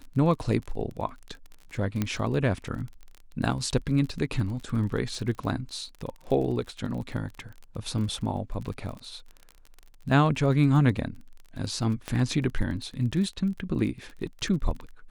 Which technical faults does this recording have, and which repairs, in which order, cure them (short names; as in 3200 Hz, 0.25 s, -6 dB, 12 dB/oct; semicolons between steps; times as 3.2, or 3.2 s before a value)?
crackle 31/s -35 dBFS
2.02 pop -13 dBFS
12.08 pop -17 dBFS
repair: de-click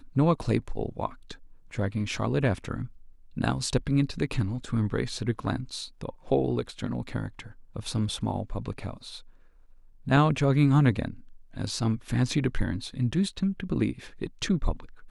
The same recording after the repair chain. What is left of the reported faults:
none